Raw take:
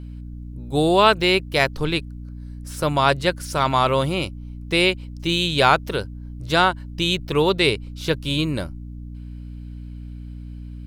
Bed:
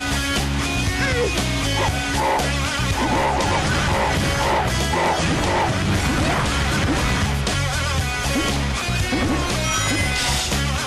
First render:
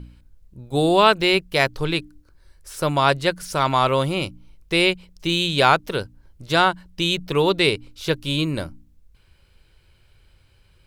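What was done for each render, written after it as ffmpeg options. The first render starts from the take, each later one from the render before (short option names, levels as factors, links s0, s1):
-af "bandreject=f=60:t=h:w=4,bandreject=f=120:t=h:w=4,bandreject=f=180:t=h:w=4,bandreject=f=240:t=h:w=4,bandreject=f=300:t=h:w=4"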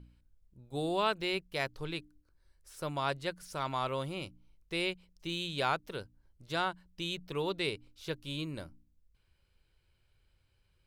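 -af "volume=0.168"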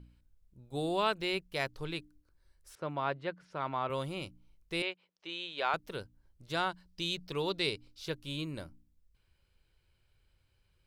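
-filter_complex "[0:a]asettb=1/sr,asplit=3[s0][s1][s2];[s0]atrim=end=2.754[s3];[s1]atrim=start=2.75:end=3.9,asetpts=PTS-STARTPTS,afade=t=in:d=0.004:c=qsin,afade=t=out:st=1.146:d=0.004:c=qsin,highpass=130,lowpass=2300[s4];[s2]atrim=start=3.896[s5];[s3][s4]acrossfade=d=0.004:c1=hsin:c2=qsin[s6];[s6][s5]acrossfade=d=0.004:c1=qsin:c2=hsin,asettb=1/sr,asplit=3[s7][s8][s9];[s7]atrim=end=4.824[s10];[s8]atrim=start=4.82:end=5.74,asetpts=PTS-STARTPTS,afade=t=in:d=0.004:c=qsin,afade=t=out:st=0.916:d=0.004:c=qsin,highpass=470,lowpass=3500[s11];[s9]atrim=start=5.736[s12];[s10][s11]acrossfade=d=0.004:c1=hsin:c2=qsin[s13];[s13][s12]acrossfade=d=0.004:c1=qsin:c2=hsin,asettb=1/sr,asplit=3[s14][s15][s16];[s14]atrim=end=6.694[s17];[s15]atrim=start=6.69:end=8.06,asetpts=PTS-STARTPTS,afade=t=in:d=0.004:c=qsin,afade=t=out:st=1.366:d=0.004:c=qsin,equalizer=f=4800:w=2:g=8[s18];[s16]atrim=start=8.056[s19];[s17][s18]acrossfade=d=0.004:c1=hsin:c2=qsin[s20];[s20][s19]acrossfade=d=0.004:c1=qsin:c2=hsin"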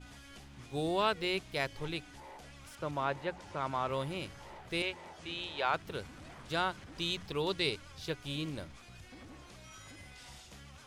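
-filter_complex "[1:a]volume=0.0266[s0];[0:a][s0]amix=inputs=2:normalize=0"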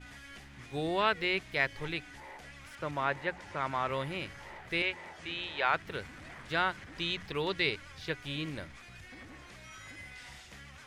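-filter_complex "[0:a]acrossover=split=5000[s0][s1];[s1]acompressor=threshold=0.00158:ratio=4:attack=1:release=60[s2];[s0][s2]amix=inputs=2:normalize=0,equalizer=f=1900:w=1.8:g=9.5"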